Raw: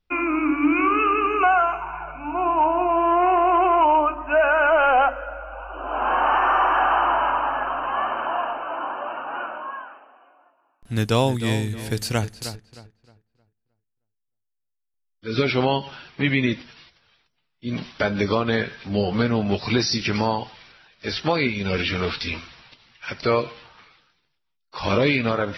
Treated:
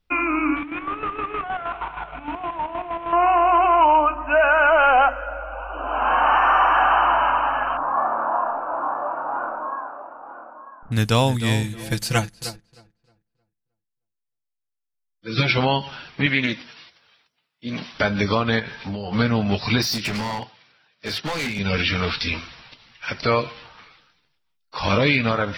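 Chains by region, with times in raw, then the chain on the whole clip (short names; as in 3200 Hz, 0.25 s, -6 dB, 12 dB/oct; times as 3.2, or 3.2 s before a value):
0.56–3.13 CVSD 16 kbps + compressor 12:1, threshold -24 dBFS + chopper 6.4 Hz, depth 60%, duty 45%
7.77–10.92 LPF 1300 Hz 24 dB/oct + doubler 29 ms -3 dB + echo 0.946 s -13 dB
11.63–15.58 comb 5.9 ms, depth 97% + upward expander, over -42 dBFS
16.26–17.94 HPF 260 Hz 6 dB/oct + Doppler distortion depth 0.12 ms
18.59–19.13 compressor 12:1, threshold -27 dBFS + bell 880 Hz +9.5 dB 0.2 oct
19.82–21.59 HPF 92 Hz 24 dB/oct + hard clip -24.5 dBFS + upward expander, over -49 dBFS
whole clip: notch 370 Hz, Q 12; dynamic EQ 400 Hz, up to -5 dB, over -34 dBFS, Q 0.9; gain +3.5 dB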